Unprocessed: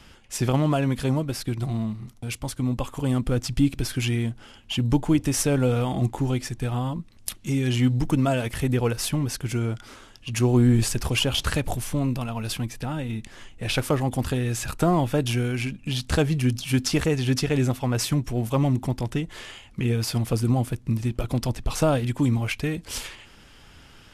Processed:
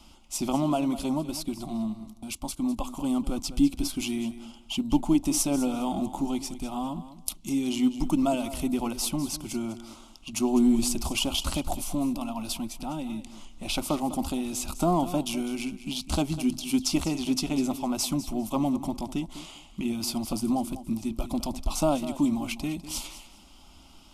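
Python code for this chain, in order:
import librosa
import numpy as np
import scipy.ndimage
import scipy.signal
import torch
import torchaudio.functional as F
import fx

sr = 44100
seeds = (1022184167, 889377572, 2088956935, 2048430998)

y = fx.fixed_phaser(x, sr, hz=460.0, stages=6)
y = fx.echo_feedback(y, sr, ms=201, feedback_pct=21, wet_db=-14)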